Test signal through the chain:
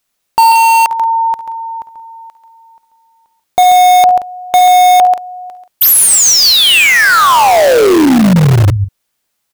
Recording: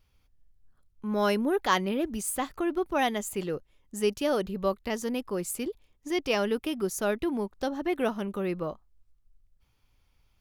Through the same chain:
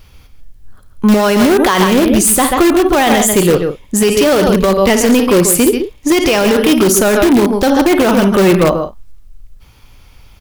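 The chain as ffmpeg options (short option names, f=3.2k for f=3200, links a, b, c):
-filter_complex "[0:a]aecho=1:1:52|68|137|178:0.188|0.126|0.316|0.112,asplit=2[a][b];[b]aeval=exprs='(mod(17.8*val(0)+1,2)-1)/17.8':c=same,volume=-8dB[c];[a][c]amix=inputs=2:normalize=0,acontrast=27,alimiter=level_in=18.5dB:limit=-1dB:release=50:level=0:latency=1,volume=-1.5dB"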